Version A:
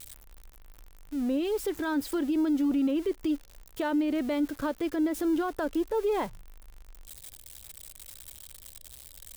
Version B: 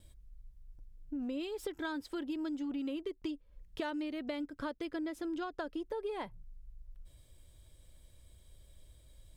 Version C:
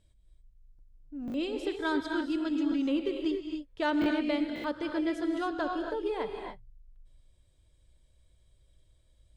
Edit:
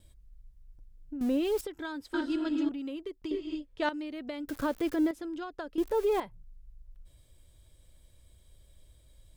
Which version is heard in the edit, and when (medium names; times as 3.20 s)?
B
1.21–1.61 s: from A
2.14–2.69 s: from C
3.31–3.89 s: from C
4.48–5.11 s: from A
5.78–6.20 s: from A